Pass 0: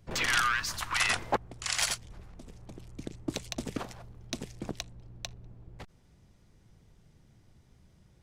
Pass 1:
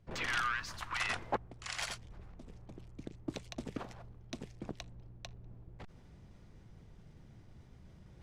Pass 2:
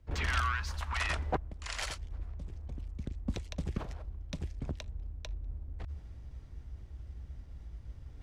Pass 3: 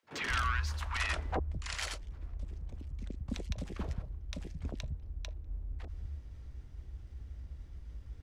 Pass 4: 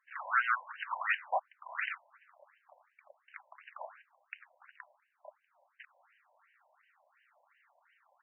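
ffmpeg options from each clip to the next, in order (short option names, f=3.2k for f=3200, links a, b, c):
-af "lowpass=f=2.8k:p=1,areverse,acompressor=mode=upward:threshold=-39dB:ratio=2.5,areverse,volume=-5.5dB"
-af "afreqshift=-75,equalizer=f=60:w=0.74:g=13.5,volume=1dB"
-filter_complex "[0:a]acrossover=split=160|760[a][b][c];[b]adelay=30[d];[a]adelay=210[e];[e][d][c]amix=inputs=3:normalize=0"
-af "highpass=480,afftfilt=real='re*between(b*sr/1024,720*pow(2200/720,0.5+0.5*sin(2*PI*2.8*pts/sr))/1.41,720*pow(2200/720,0.5+0.5*sin(2*PI*2.8*pts/sr))*1.41)':imag='im*between(b*sr/1024,720*pow(2200/720,0.5+0.5*sin(2*PI*2.8*pts/sr))/1.41,720*pow(2200/720,0.5+0.5*sin(2*PI*2.8*pts/sr))*1.41)':win_size=1024:overlap=0.75,volume=8dB"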